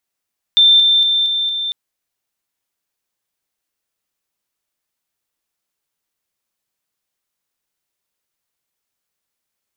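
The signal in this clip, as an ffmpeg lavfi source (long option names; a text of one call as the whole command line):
ffmpeg -f lavfi -i "aevalsrc='pow(10,(-6.5-3*floor(t/0.23))/20)*sin(2*PI*3570*t)':duration=1.15:sample_rate=44100" out.wav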